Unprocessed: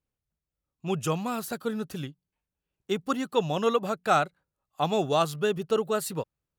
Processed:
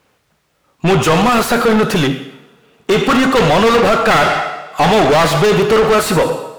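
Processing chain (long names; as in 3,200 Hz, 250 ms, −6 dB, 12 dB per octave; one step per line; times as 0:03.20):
wavefolder on the positive side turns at −19.5 dBFS
coupled-rooms reverb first 0.77 s, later 2.5 s, from −27 dB, DRR 12 dB
mid-hump overdrive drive 36 dB, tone 2,000 Hz, clips at −12 dBFS
level +8.5 dB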